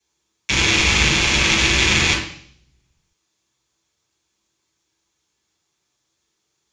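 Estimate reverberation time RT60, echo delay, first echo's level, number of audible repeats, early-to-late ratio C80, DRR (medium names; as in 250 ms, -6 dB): 0.55 s, no echo, no echo, no echo, 8.0 dB, -7.5 dB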